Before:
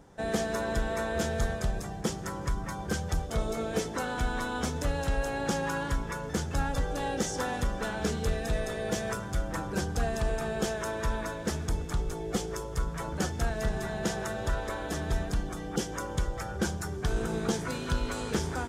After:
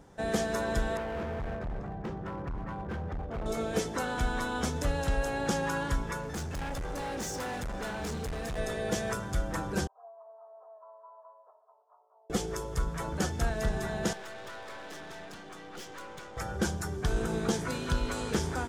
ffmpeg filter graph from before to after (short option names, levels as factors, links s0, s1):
-filter_complex "[0:a]asettb=1/sr,asplit=3[s0][s1][s2];[s0]atrim=end=0.974[s3];[s1]atrim=start=0.97:end=3.46,asetpts=PTS-STARTPTS,afade=t=in:d=0.004:c=qsin,afade=t=out:st=2.486:d=0.004:c=qsin,lowpass=1400,asoftclip=type=hard:threshold=0.0237[s4];[s2]atrim=start=3.456[s5];[s3][s4]acrossfade=d=0.004:c1=hsin:c2=qsin[s6];[s6][s5]acrossfade=d=0.004:c1=qsin:c2=hsin,asettb=1/sr,asplit=3[s7][s8][s9];[s7]atrim=end=6.214[s10];[s8]atrim=start=6.21:end=8.58,asetpts=PTS-STARTPTS,afade=t=in:d=0.004:c=qsin,afade=t=out:st=2.366:d=0.004:c=qsin,equalizer=f=3200:t=o:w=0.21:g=-5,asoftclip=type=hard:threshold=0.0224[s11];[s9]atrim=start=8.576[s12];[s10][s11]acrossfade=d=0.004:c1=hsin:c2=qsin[s13];[s13][s12]acrossfade=d=0.004:c1=qsin:c2=hsin,asettb=1/sr,asplit=3[s14][s15][s16];[s14]atrim=end=9.874[s17];[s15]atrim=start=9.87:end=12.3,asetpts=PTS-STARTPTS,afade=t=in:d=0.004:c=qsin,afade=t=out:st=2.426:d=0.004:c=qsin,asuperpass=centerf=740:order=12:qfactor=1.1,aderivative,aecho=1:1:3:0.91,atrim=end_sample=107163[s18];[s16]atrim=start=12.296[s19];[s17][s18]acrossfade=d=0.004:c1=hsin:c2=qsin[s20];[s20][s19]acrossfade=d=0.004:c1=qsin:c2=hsin,asettb=1/sr,asplit=3[s21][s22][s23];[s21]atrim=end=14.134[s24];[s22]atrim=start=14.13:end=16.37,asetpts=PTS-STARTPTS,afade=t=in:d=0.004:c=qsin,afade=t=out:st=2.236:d=0.004:c=qsin,highpass=110,lowpass=3100,aemphasis=mode=production:type=riaa,aeval=exprs='(tanh(112*val(0)+0.7)-tanh(0.7))/112':c=same[s25];[s23]atrim=start=16.366[s26];[s24][s25]acrossfade=d=0.004:c1=hsin:c2=qsin[s27];[s27][s26]acrossfade=d=0.004:c1=qsin:c2=hsin"